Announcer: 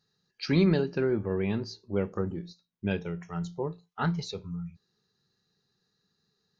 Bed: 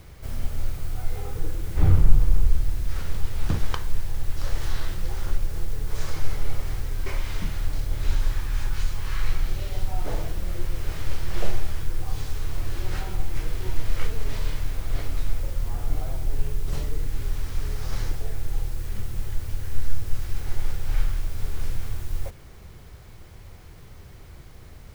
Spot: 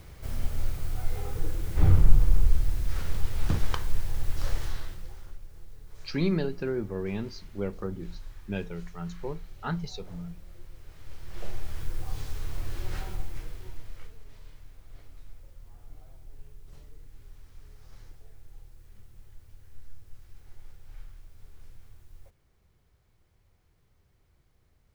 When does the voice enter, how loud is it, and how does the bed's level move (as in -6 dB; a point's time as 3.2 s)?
5.65 s, -3.5 dB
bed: 4.5 s -2 dB
5.36 s -19.5 dB
10.93 s -19.5 dB
11.83 s -5.5 dB
13.08 s -5.5 dB
14.24 s -22 dB